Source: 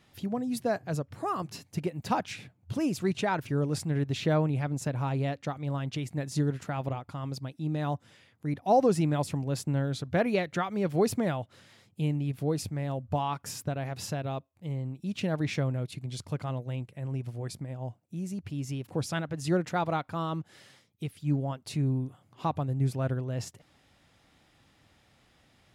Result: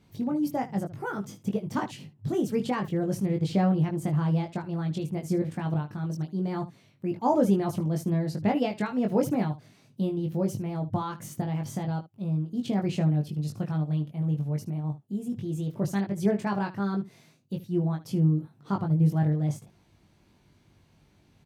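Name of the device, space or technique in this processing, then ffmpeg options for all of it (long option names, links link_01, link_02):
nightcore: -af "lowshelf=frequency=350:gain=12,asetrate=52920,aresample=44100,aecho=1:1:20|75:0.668|0.158,volume=-6.5dB"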